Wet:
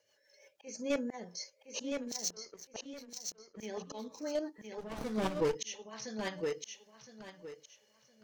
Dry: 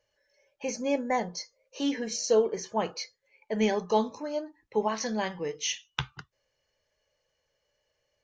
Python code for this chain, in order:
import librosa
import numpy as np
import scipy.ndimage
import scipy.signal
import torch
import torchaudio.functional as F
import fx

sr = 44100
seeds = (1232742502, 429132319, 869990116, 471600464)

p1 = scipy.signal.sosfilt(scipy.signal.butter(2, 170.0, 'highpass', fs=sr, output='sos'), x)
p2 = fx.high_shelf(p1, sr, hz=5100.0, db=8.5)
p3 = fx.auto_swell(p2, sr, attack_ms=705.0)
p4 = fx.level_steps(p3, sr, step_db=17)
p5 = p3 + (p4 * librosa.db_to_amplitude(2.0))
p6 = np.clip(p5, -10.0 ** (-23.5 / 20.0), 10.0 ** (-23.5 / 20.0))
p7 = fx.rotary_switch(p6, sr, hz=6.0, then_hz=0.85, switch_at_s=5.33)
p8 = fx.power_curve(p7, sr, exponent=2.0, at=(1.92, 3.57))
p9 = fx.echo_feedback(p8, sr, ms=1014, feedback_pct=24, wet_db=-5.0)
p10 = fx.running_max(p9, sr, window=17, at=(4.77, 5.54), fade=0.02)
y = p10 * librosa.db_to_amplitude(1.0)